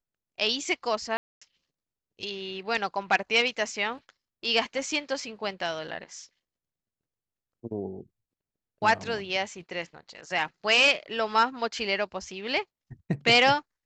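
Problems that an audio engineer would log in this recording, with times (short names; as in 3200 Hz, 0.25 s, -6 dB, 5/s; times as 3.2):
1.17–1.42 gap 0.245 s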